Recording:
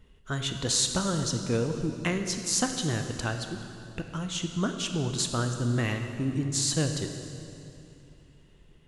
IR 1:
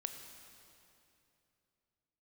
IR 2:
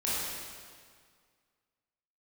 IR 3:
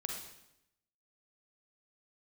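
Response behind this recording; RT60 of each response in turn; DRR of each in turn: 1; 2.8, 1.9, 0.85 seconds; 5.5, −9.0, 0.5 decibels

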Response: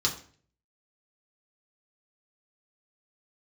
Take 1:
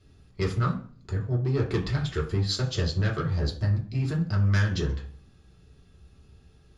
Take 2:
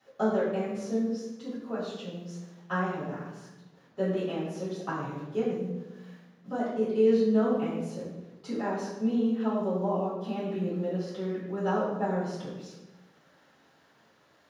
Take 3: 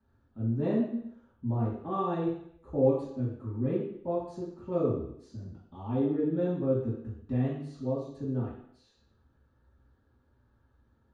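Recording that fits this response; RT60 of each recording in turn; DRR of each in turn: 1; 0.45, 1.1, 0.70 seconds; −3.5, −12.0, −9.5 decibels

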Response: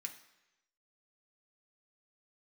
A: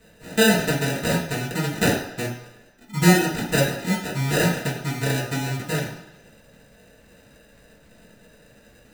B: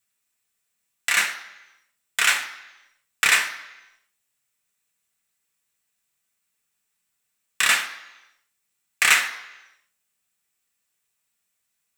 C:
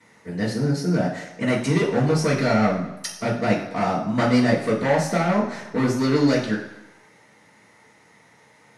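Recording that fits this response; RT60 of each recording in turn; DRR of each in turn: B; 1.0, 1.0, 1.0 seconds; −7.5, 2.5, −14.5 decibels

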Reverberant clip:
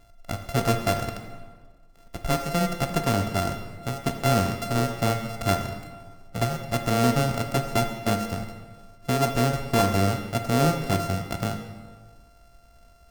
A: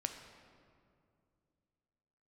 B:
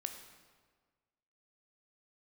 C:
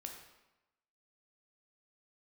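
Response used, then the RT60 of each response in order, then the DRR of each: B; 2.4, 1.6, 1.0 seconds; 5.0, 5.5, 2.0 decibels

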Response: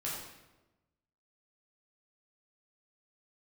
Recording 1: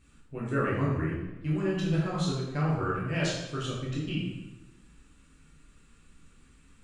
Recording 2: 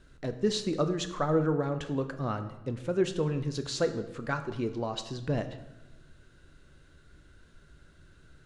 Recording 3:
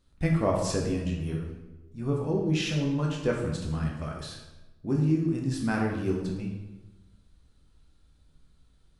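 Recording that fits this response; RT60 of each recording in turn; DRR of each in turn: 1; 1.1, 1.1, 1.1 seconds; −7.0, 8.0, −1.5 decibels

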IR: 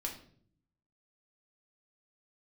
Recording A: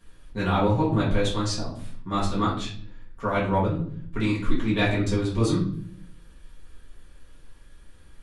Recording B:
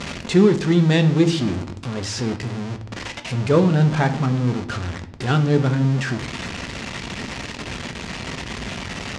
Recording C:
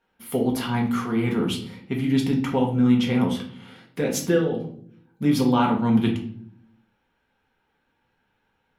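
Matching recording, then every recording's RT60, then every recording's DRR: C; 0.55 s, non-exponential decay, 0.55 s; −8.5, 6.5, 0.0 decibels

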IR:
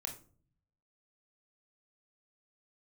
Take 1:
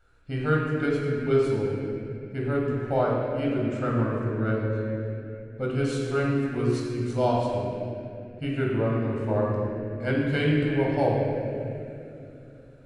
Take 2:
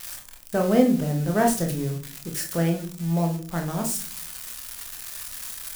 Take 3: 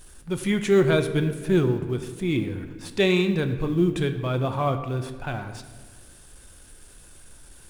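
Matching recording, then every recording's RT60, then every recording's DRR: 2; 2.9, 0.45, 1.6 seconds; −4.0, 2.0, 6.5 decibels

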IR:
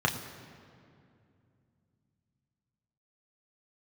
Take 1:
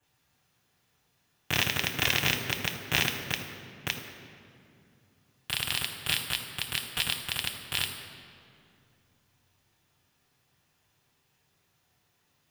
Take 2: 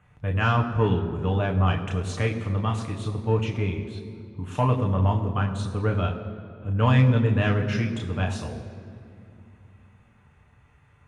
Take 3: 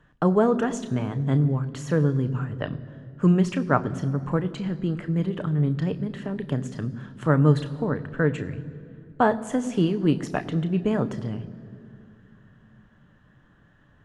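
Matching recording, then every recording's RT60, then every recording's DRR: 2; 2.5, 2.5, 2.5 seconds; −9.0, 1.0, 10.0 decibels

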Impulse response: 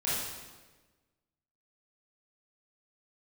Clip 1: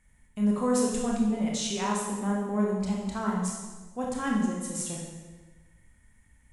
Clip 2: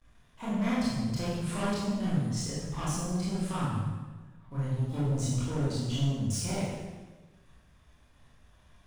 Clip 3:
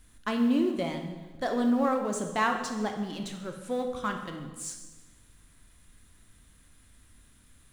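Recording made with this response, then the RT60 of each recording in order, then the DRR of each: 2; 1.3, 1.3, 1.3 seconds; −2.5, −10.0, 4.0 decibels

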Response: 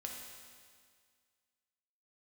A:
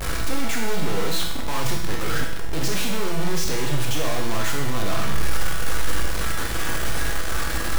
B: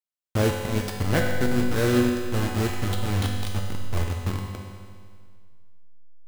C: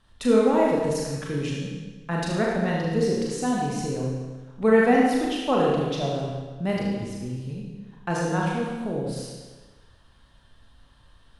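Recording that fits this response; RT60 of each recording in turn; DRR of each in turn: B; 0.85, 1.9, 1.3 seconds; −0.5, −0.5, −3.5 decibels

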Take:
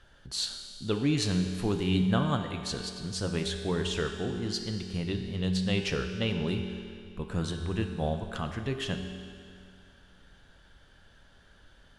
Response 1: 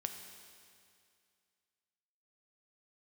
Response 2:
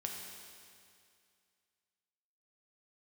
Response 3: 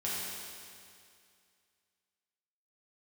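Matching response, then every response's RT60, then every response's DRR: 1; 2.3, 2.3, 2.3 seconds; 5.0, 0.0, −8.0 decibels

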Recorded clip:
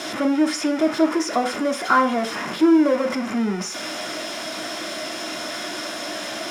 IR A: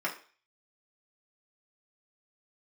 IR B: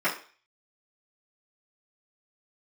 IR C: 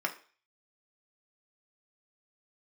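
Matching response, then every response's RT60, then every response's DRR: C; 0.40, 0.40, 0.40 seconds; −4.0, −12.5, 1.5 decibels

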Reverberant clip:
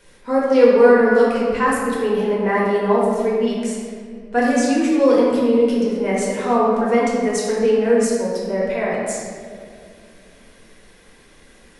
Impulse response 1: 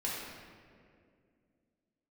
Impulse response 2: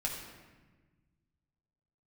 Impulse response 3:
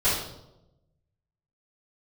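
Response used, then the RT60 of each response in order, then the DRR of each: 1; 2.3, 1.3, 0.90 seconds; −6.5, −3.5, −13.5 decibels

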